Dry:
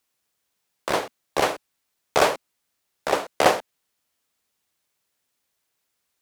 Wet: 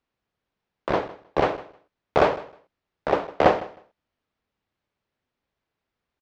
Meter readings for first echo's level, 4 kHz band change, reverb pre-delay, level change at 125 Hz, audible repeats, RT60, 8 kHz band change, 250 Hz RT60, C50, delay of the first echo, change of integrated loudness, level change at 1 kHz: −18.5 dB, −8.5 dB, no reverb audible, +6.0 dB, 2, no reverb audible, below −15 dB, no reverb audible, no reverb audible, 156 ms, −0.5 dB, −0.5 dB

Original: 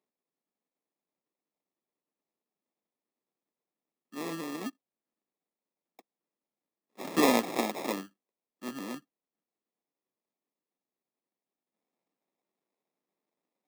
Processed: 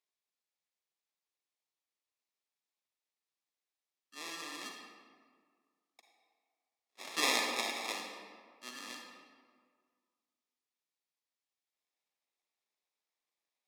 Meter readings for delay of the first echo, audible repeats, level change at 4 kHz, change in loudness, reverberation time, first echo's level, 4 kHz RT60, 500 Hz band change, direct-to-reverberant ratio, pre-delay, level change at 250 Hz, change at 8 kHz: no echo audible, no echo audible, +3.5 dB, −4.5 dB, 1.8 s, no echo audible, 1.1 s, −11.5 dB, 1.0 dB, 38 ms, −16.5 dB, +0.5 dB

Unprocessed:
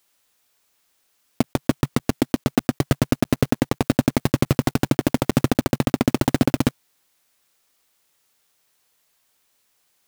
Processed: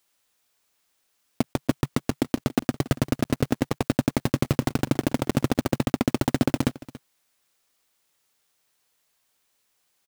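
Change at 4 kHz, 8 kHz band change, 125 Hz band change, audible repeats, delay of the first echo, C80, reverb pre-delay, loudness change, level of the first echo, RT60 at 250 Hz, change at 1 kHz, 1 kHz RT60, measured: −4.0 dB, −4.0 dB, −4.0 dB, 1, 282 ms, no reverb audible, no reverb audible, −4.0 dB, −18.0 dB, no reverb audible, −4.0 dB, no reverb audible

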